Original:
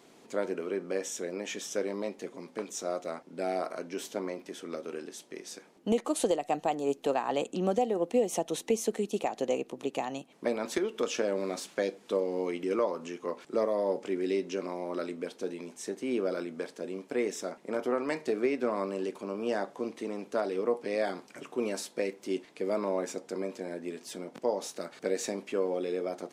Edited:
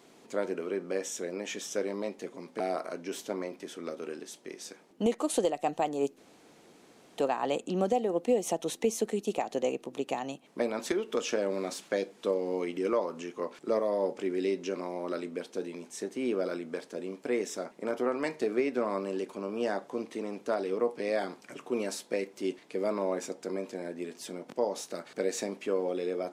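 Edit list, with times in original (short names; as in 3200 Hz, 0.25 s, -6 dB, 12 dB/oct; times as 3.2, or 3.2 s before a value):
2.6–3.46 cut
7.04 insert room tone 1.00 s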